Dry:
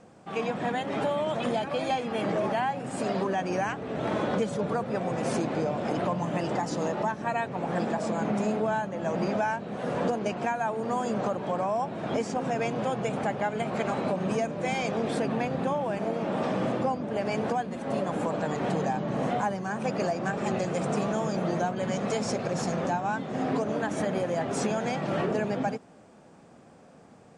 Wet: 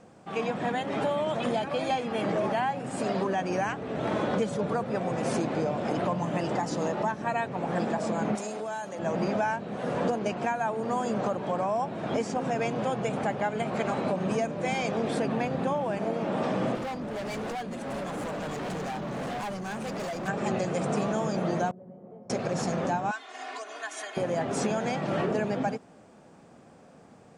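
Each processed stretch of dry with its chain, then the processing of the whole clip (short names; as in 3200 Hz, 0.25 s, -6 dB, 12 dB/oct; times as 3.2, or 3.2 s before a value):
8.35–8.99 tone controls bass -11 dB, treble +12 dB + compressor 2.5:1, threshold -33 dBFS
16.75–20.28 high shelf 4800 Hz +6.5 dB + hard clip -31.5 dBFS
21.71–22.3 Chebyshev low-pass 550 Hz + resonator 180 Hz, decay 1.2 s, mix 90%
23.11–24.17 Bessel high-pass 1600 Hz + comb 2.8 ms, depth 90%
whole clip: dry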